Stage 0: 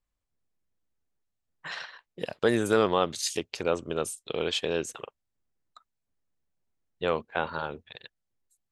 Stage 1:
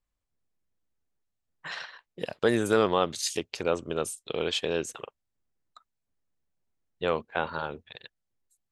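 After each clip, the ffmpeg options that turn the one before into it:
ffmpeg -i in.wav -af anull out.wav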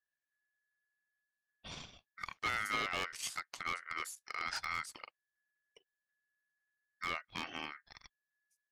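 ffmpeg -i in.wav -af "aeval=exprs='0.119*(abs(mod(val(0)/0.119+3,4)-2)-1)':channel_layout=same,aeval=exprs='val(0)*sin(2*PI*1700*n/s)':channel_layout=same,volume=-7dB" out.wav

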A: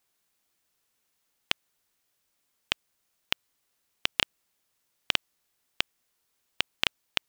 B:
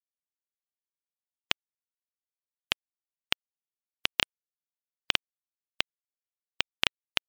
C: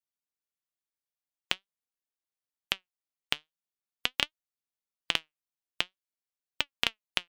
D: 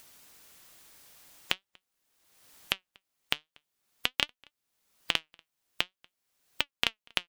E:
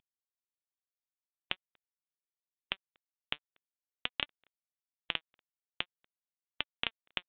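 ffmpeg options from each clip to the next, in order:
ffmpeg -i in.wav -af "afftfilt=real='re*gte(hypot(re,im),0.00251)':imag='im*gte(hypot(re,im),0.00251)':win_size=1024:overlap=0.75" out.wav
ffmpeg -i in.wav -af "flanger=delay=3:depth=4.1:regen=76:speed=0.46:shape=triangular,volume=3dB" out.wav
ffmpeg -i in.wav -filter_complex "[0:a]acompressor=mode=upward:threshold=-28dB:ratio=2.5,asplit=2[link_01][link_02];[link_02]adelay=239.1,volume=-29dB,highshelf=frequency=4000:gain=-5.38[link_03];[link_01][link_03]amix=inputs=2:normalize=0" out.wav
ffmpeg -i in.wav -af "aeval=exprs='sgn(val(0))*max(abs(val(0))-0.0075,0)':channel_layout=same,volume=-6dB" -ar 8000 -c:a pcm_mulaw out.wav

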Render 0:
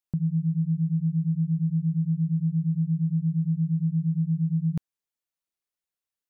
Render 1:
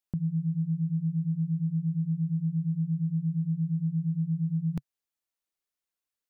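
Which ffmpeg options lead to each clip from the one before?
ffmpeg -i in.wav -af "equalizer=frequency=140:width=6.2:gain=-13.5" out.wav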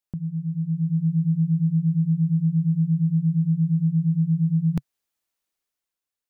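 ffmpeg -i in.wav -af "dynaudnorm=framelen=120:gausssize=13:maxgain=7.5dB" out.wav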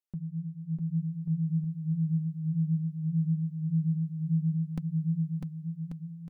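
ffmpeg -i in.wav -af "flanger=delay=3.2:depth=4.4:regen=22:speed=1.7:shape=sinusoidal,aecho=1:1:650|1138|1503|1777|1983:0.631|0.398|0.251|0.158|0.1,volume=-5dB" out.wav

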